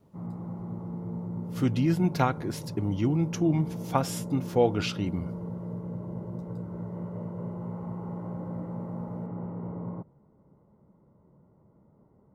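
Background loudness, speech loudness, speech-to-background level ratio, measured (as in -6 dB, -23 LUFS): -37.0 LUFS, -28.0 LUFS, 9.0 dB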